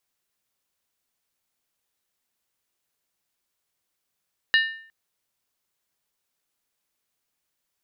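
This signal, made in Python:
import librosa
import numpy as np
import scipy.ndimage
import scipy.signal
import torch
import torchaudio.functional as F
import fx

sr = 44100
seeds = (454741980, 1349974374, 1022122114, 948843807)

y = fx.strike_skin(sr, length_s=0.36, level_db=-14.0, hz=1800.0, decay_s=0.55, tilt_db=5.5, modes=5)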